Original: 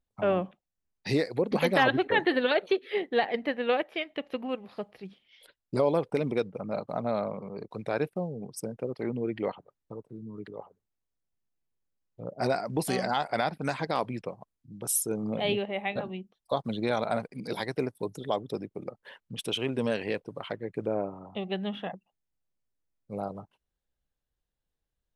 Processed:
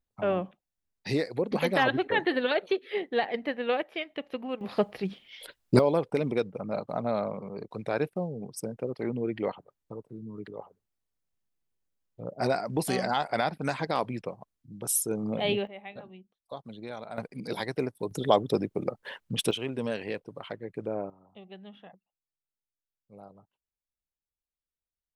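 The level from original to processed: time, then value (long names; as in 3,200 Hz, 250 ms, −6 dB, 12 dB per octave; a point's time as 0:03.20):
−1.5 dB
from 0:04.61 +11 dB
from 0:05.79 +0.5 dB
from 0:15.67 −11.5 dB
from 0:17.18 0 dB
from 0:18.11 +7.5 dB
from 0:19.51 −3 dB
from 0:21.10 −14.5 dB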